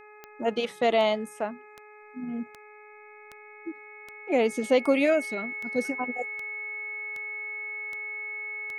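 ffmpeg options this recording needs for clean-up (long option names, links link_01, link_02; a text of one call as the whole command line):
ffmpeg -i in.wav -af "adeclick=threshold=4,bandreject=frequency=421.4:width_type=h:width=4,bandreject=frequency=842.8:width_type=h:width=4,bandreject=frequency=1264.2:width_type=h:width=4,bandreject=frequency=1685.6:width_type=h:width=4,bandreject=frequency=2107:width_type=h:width=4,bandreject=frequency=2528.4:width_type=h:width=4,bandreject=frequency=2200:width=30" out.wav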